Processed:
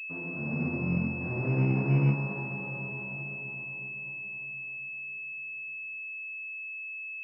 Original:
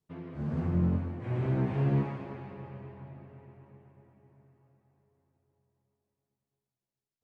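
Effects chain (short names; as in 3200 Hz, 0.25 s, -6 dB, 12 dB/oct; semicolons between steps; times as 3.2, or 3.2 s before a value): HPF 110 Hz; in parallel at 0 dB: compressor, threshold -38 dBFS, peak gain reduction 13.5 dB; on the sum: reverb RT60 0.45 s, pre-delay 76 ms, DRR 4 dB; pulse-width modulation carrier 2600 Hz; gain -6 dB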